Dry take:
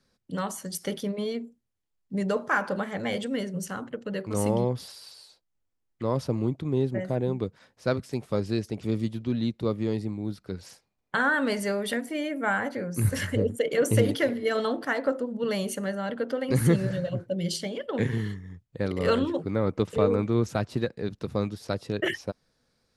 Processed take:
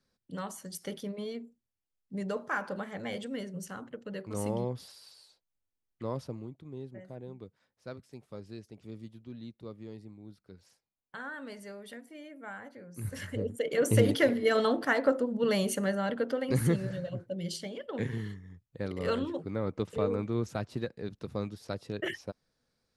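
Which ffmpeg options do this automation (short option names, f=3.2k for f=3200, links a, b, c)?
-af "volume=10dB,afade=t=out:st=6.06:d=0.42:silence=0.334965,afade=t=in:st=12.85:d=0.65:silence=0.334965,afade=t=in:st=13.5:d=0.77:silence=0.398107,afade=t=out:st=15.96:d=0.84:silence=0.421697"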